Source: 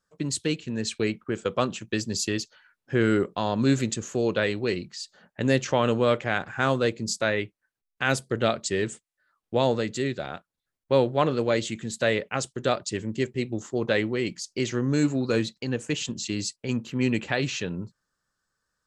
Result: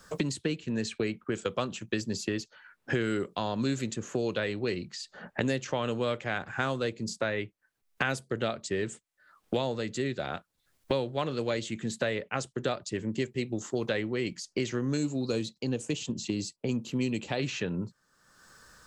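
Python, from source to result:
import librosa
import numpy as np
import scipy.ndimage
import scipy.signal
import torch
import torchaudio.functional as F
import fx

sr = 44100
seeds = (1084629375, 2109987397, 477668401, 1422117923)

y = fx.peak_eq(x, sr, hz=1700.0, db=-10.0, octaves=1.1, at=(14.97, 17.39))
y = fx.band_squash(y, sr, depth_pct=100)
y = y * 10.0 ** (-6.0 / 20.0)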